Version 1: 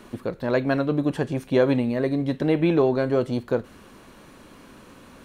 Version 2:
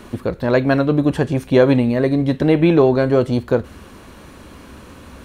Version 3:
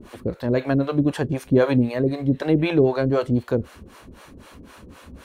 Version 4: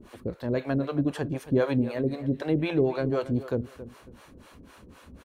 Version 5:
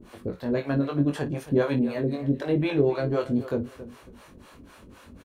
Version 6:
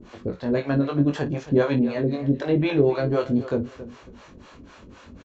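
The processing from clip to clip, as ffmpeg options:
ffmpeg -i in.wav -af "equalizer=frequency=70:width_type=o:width=0.76:gain=13,volume=6.5dB" out.wav
ffmpeg -i in.wav -filter_complex "[0:a]acrossover=split=480[link_01][link_02];[link_01]aeval=exprs='val(0)*(1-1/2+1/2*cos(2*PI*3.9*n/s))':channel_layout=same[link_03];[link_02]aeval=exprs='val(0)*(1-1/2-1/2*cos(2*PI*3.9*n/s))':channel_layout=same[link_04];[link_03][link_04]amix=inputs=2:normalize=0" out.wav
ffmpeg -i in.wav -filter_complex "[0:a]asplit=2[link_01][link_02];[link_02]adelay=273,lowpass=frequency=2800:poles=1,volume=-14dB,asplit=2[link_03][link_04];[link_04]adelay=273,lowpass=frequency=2800:poles=1,volume=0.25,asplit=2[link_05][link_06];[link_06]adelay=273,lowpass=frequency=2800:poles=1,volume=0.25[link_07];[link_01][link_03][link_05][link_07]amix=inputs=4:normalize=0,volume=-6.5dB" out.wav
ffmpeg -i in.wav -af "aecho=1:1:21|54:0.631|0.178" out.wav
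ffmpeg -i in.wav -af "aresample=16000,aresample=44100,volume=3dB" out.wav

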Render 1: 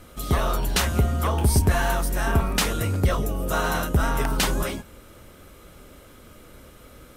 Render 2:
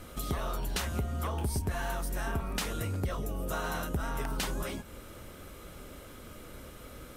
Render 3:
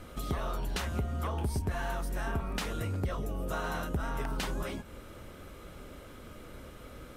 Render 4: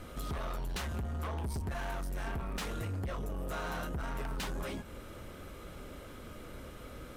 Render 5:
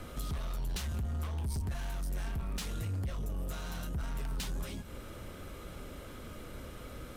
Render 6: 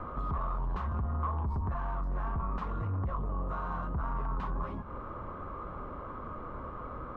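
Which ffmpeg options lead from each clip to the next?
ffmpeg -i in.wav -af "acompressor=threshold=-34dB:ratio=3" out.wav
ffmpeg -i in.wav -af "highshelf=frequency=5500:gain=-8" out.wav
ffmpeg -i in.wav -af "asoftclip=type=tanh:threshold=-34dB,volume=1dB" out.wav
ffmpeg -i in.wav -filter_complex "[0:a]acrossover=split=200|3000[link_01][link_02][link_03];[link_02]acompressor=threshold=-49dB:ratio=6[link_04];[link_01][link_04][link_03]amix=inputs=3:normalize=0,volume=2.5dB" out.wav
ffmpeg -i in.wav -af "lowpass=frequency=1100:width_type=q:width=6.6,volume=2dB" out.wav

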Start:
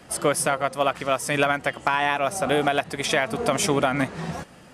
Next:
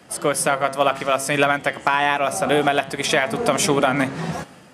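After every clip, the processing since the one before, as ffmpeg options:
ffmpeg -i in.wav -af "highpass=100,bandreject=frequency=135.5:width_type=h:width=4,bandreject=frequency=271:width_type=h:width=4,bandreject=frequency=406.5:width_type=h:width=4,bandreject=frequency=542:width_type=h:width=4,bandreject=frequency=677.5:width_type=h:width=4,bandreject=frequency=813:width_type=h:width=4,bandreject=frequency=948.5:width_type=h:width=4,bandreject=frequency=1084:width_type=h:width=4,bandreject=frequency=1219.5:width_type=h:width=4,bandreject=frequency=1355:width_type=h:width=4,bandreject=frequency=1490.5:width_type=h:width=4,bandreject=frequency=1626:width_type=h:width=4,bandreject=frequency=1761.5:width_type=h:width=4,bandreject=frequency=1897:width_type=h:width=4,bandreject=frequency=2032.5:width_type=h:width=4,bandreject=frequency=2168:width_type=h:width=4,bandreject=frequency=2303.5:width_type=h:width=4,bandreject=frequency=2439:width_type=h:width=4,bandreject=frequency=2574.5:width_type=h:width=4,bandreject=frequency=2710:width_type=h:width=4,bandreject=frequency=2845.5:width_type=h:width=4,bandreject=frequency=2981:width_type=h:width=4,bandreject=frequency=3116.5:width_type=h:width=4,bandreject=frequency=3252:width_type=h:width=4,bandreject=frequency=3387.5:width_type=h:width=4,bandreject=frequency=3523:width_type=h:width=4,bandreject=frequency=3658.5:width_type=h:width=4,bandreject=frequency=3794:width_type=h:width=4,bandreject=frequency=3929.5:width_type=h:width=4,bandreject=frequency=4065:width_type=h:width=4,bandreject=frequency=4200.5:width_type=h:width=4,bandreject=frequency=4336:width_type=h:width=4,bandreject=frequency=4471.5:width_type=h:width=4,dynaudnorm=framelen=110:gausssize=7:maxgain=6dB" out.wav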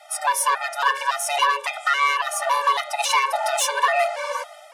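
ffmpeg -i in.wav -af "asoftclip=type=tanh:threshold=-14.5dB,afreqshift=420,afftfilt=real='re*gt(sin(2*PI*1.8*pts/sr)*(1-2*mod(floor(b*sr/1024/300),2)),0)':imag='im*gt(sin(2*PI*1.8*pts/sr)*(1-2*mod(floor(b*sr/1024/300),2)),0)':win_size=1024:overlap=0.75,volume=4.5dB" out.wav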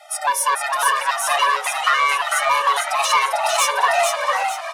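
ffmpeg -i in.wav -filter_complex "[0:a]asplit=2[link_01][link_02];[link_02]asoftclip=type=tanh:threshold=-20dB,volume=-10.5dB[link_03];[link_01][link_03]amix=inputs=2:normalize=0,asplit=6[link_04][link_05][link_06][link_07][link_08][link_09];[link_05]adelay=449,afreqshift=85,volume=-4dB[link_10];[link_06]adelay=898,afreqshift=170,volume=-12.6dB[link_11];[link_07]adelay=1347,afreqshift=255,volume=-21.3dB[link_12];[link_08]adelay=1796,afreqshift=340,volume=-29.9dB[link_13];[link_09]adelay=2245,afreqshift=425,volume=-38.5dB[link_14];[link_04][link_10][link_11][link_12][link_13][link_14]amix=inputs=6:normalize=0" out.wav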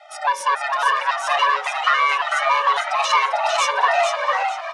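ffmpeg -i in.wav -filter_complex "[0:a]acrossover=split=2400[link_01][link_02];[link_02]adynamicsmooth=sensitivity=1.5:basefreq=5200[link_03];[link_01][link_03]amix=inputs=2:normalize=0,highpass=310,lowpass=6900" out.wav

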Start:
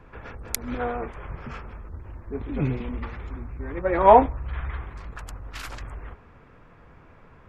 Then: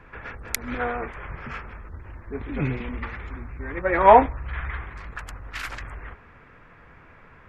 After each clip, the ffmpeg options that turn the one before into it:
ffmpeg -i in.wav -af "equalizer=frequency=1900:width_type=o:width=1.3:gain=9,volume=-1dB" out.wav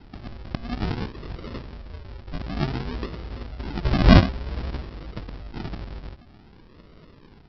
ffmpeg -i in.wav -af "bandreject=frequency=129:width_type=h:width=4,bandreject=frequency=258:width_type=h:width=4,bandreject=frequency=387:width_type=h:width=4,bandreject=frequency=516:width_type=h:width=4,bandreject=frequency=645:width_type=h:width=4,aresample=11025,acrusher=samples=19:mix=1:aa=0.000001:lfo=1:lforange=11.4:lforate=0.54,aresample=44100,volume=1dB" out.wav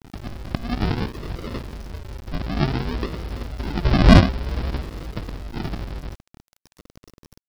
ffmpeg -i in.wav -af "acontrast=55,aeval=exprs='val(0)*gte(abs(val(0)),0.0158)':channel_layout=same,volume=-1.5dB" out.wav

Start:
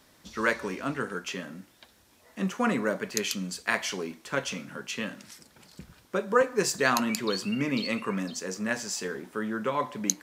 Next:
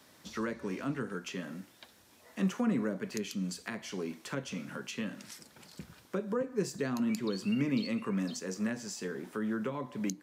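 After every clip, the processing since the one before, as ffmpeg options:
ffmpeg -i in.wav -filter_complex "[0:a]highpass=87,acrossover=split=360[link_01][link_02];[link_02]acompressor=threshold=-39dB:ratio=10[link_03];[link_01][link_03]amix=inputs=2:normalize=0" out.wav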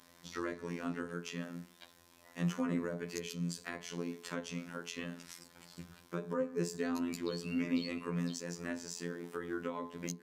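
ffmpeg -i in.wav -af "aeval=exprs='val(0)+0.000891*sin(2*PI*1000*n/s)':channel_layout=same,afftfilt=real='hypot(re,im)*cos(PI*b)':imag='0':win_size=2048:overlap=0.75,bandreject=frequency=61.2:width_type=h:width=4,bandreject=frequency=122.4:width_type=h:width=4,bandreject=frequency=183.6:width_type=h:width=4,bandreject=frequency=244.8:width_type=h:width=4,bandreject=frequency=306:width_type=h:width=4,bandreject=frequency=367.2:width_type=h:width=4,bandreject=frequency=428.4:width_type=h:width=4,bandreject=frequency=489.6:width_type=h:width=4,bandreject=frequency=550.8:width_type=h:width=4,bandreject=frequency=612:width_type=h:width=4,bandreject=frequency=673.2:width_type=h:width=4,bandreject=frequency=734.4:width_type=h:width=4,bandreject=frequency=795.6:width_type=h:width=4,bandreject=frequency=856.8:width_type=h:width=4,bandreject=frequency=918:width_type=h:width=4,bandreject=frequency=979.2:width_type=h:width=4,bandreject=frequency=1040.4:width_type=h:width=4,bandreject=frequency=1101.6:width_type=h:width=4,bandreject=frequency=1162.8:width_type=h:width=4,bandreject=frequency=1224:width_type=h:width=4,volume=1dB" out.wav

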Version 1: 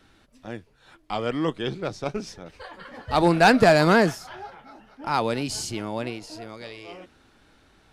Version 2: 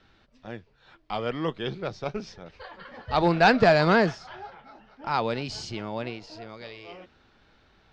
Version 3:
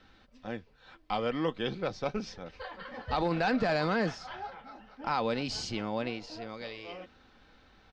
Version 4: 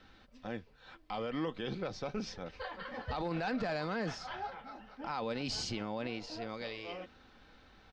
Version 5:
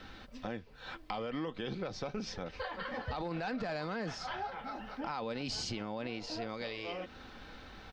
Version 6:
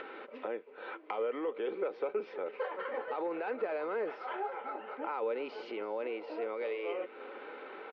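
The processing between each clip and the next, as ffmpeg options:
ffmpeg -i in.wav -af "lowpass=frequency=5300:width=0.5412,lowpass=frequency=5300:width=1.3066,equalizer=frequency=290:width=4.2:gain=-6,volume=-2dB" out.wav
ffmpeg -i in.wav -af "aecho=1:1:3.9:0.35,alimiter=limit=-16dB:level=0:latency=1:release=19,acompressor=threshold=-28dB:ratio=2" out.wav
ffmpeg -i in.wav -af "alimiter=level_in=3.5dB:limit=-24dB:level=0:latency=1:release=56,volume=-3.5dB" out.wav
ffmpeg -i in.wav -af "acompressor=threshold=-48dB:ratio=3,volume=9.5dB" out.wav
ffmpeg -i in.wav -af "highpass=frequency=400:width=0.5412,highpass=frequency=400:width=1.3066,equalizer=frequency=410:width_type=q:width=4:gain=7,equalizer=frequency=710:width_type=q:width=4:gain=-9,equalizer=frequency=1100:width_type=q:width=4:gain=-5,equalizer=frequency=1700:width_type=q:width=4:gain=-10,lowpass=frequency=2100:width=0.5412,lowpass=frequency=2100:width=1.3066,aecho=1:1:331:0.106,acompressor=mode=upward:threshold=-45dB:ratio=2.5,volume=6.5dB" out.wav

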